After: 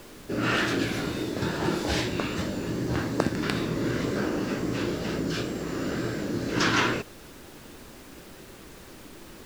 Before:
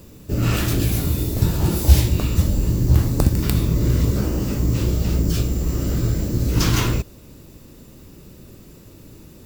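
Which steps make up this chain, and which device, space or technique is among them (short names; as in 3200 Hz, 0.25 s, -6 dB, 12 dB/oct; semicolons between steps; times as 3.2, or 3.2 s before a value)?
horn gramophone (BPF 270–4400 Hz; bell 1600 Hz +8 dB 0.46 oct; wow and flutter; pink noise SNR 19 dB)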